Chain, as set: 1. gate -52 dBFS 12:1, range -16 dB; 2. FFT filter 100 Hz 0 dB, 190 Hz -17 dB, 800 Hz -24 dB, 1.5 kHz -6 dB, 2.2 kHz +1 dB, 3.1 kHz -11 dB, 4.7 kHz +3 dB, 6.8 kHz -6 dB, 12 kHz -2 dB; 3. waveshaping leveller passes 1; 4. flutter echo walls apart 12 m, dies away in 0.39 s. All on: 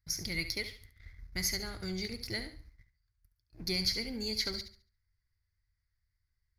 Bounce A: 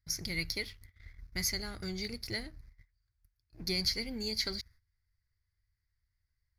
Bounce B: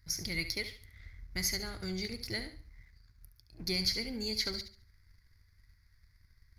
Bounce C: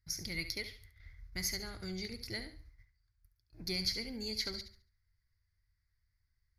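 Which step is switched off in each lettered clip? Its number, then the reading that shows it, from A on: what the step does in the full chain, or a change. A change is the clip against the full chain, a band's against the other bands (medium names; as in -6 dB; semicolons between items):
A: 4, echo-to-direct -10.5 dB to none; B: 1, momentary loudness spread change +4 LU; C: 3, crest factor change +3.5 dB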